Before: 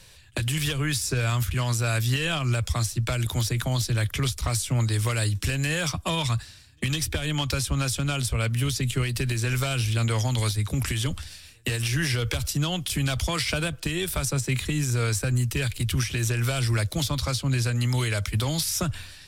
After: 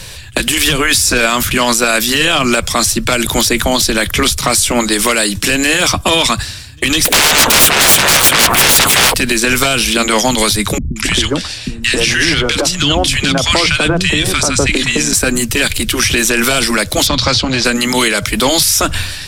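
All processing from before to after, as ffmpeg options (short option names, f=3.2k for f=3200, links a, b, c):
-filter_complex "[0:a]asettb=1/sr,asplit=3[a][b][c];[a]atrim=end=7.054[d];[b]atrim=start=7.05:end=9.14,asetpts=PTS-STARTPTS,afade=t=in:d=0.004:c=qsin,afade=t=out:st=2.086:d=0.004:c=qsin,equalizer=f=5.2k:t=o:w=0.82:g=-13.5,aeval=exprs='0.158*sin(PI/2*8.91*val(0)/0.158)':c=same[e];[c]atrim=start=9.136[f];[d][e]acrossfade=d=0.004:c1=hsin:c2=qsin[g];[g][f]acrossfade=d=0.004:c1=qsin:c2=hsin,asettb=1/sr,asplit=3[h][i][j];[h]atrim=end=10.784[k];[i]atrim=start=10.78:end=15.13,asetpts=PTS-STARTPTS,afade=t=in:d=0.004:c=qsin,afade=t=out:st=4.346:d=0.004:c=qsin,lowpass=6.9k,acrossover=split=220|1300[l][m][n];[n]adelay=180[o];[m]adelay=270[p];[l][p][o]amix=inputs=3:normalize=0,atrim=end_sample=191835[q];[j]atrim=start=15.126[r];[k][q]acrossfade=d=0.004:c1=hsin:c2=qsin[s];[s][r]acrossfade=d=0.004:c1=qsin:c2=hsin,asettb=1/sr,asplit=3[t][u][v];[t]atrim=end=17.074[w];[u]atrim=start=17.07:end=17.65,asetpts=PTS-STARTPTS,afade=t=in:d=0.004:c=qsin,afade=t=out:st=0.576:d=0.004:c=qsin,volume=20.5dB,asoftclip=hard,volume=-20.5dB,acompressor=threshold=-26dB:ratio=6:attack=3.2:release=140:knee=1:detection=peak,lowpass=f=4.8k:t=q:w=1.5[x];[v]atrim=start=17.646[y];[w][x]acrossfade=d=0.004:c1=hsin:c2=qsin[z];[z][y]acrossfade=d=0.004:c1=qsin:c2=hsin,afftfilt=real='re*lt(hypot(re,im),0.251)':imag='im*lt(hypot(re,im),0.251)':win_size=1024:overlap=0.75,alimiter=level_in=22dB:limit=-1dB:release=50:level=0:latency=1,volume=-1dB"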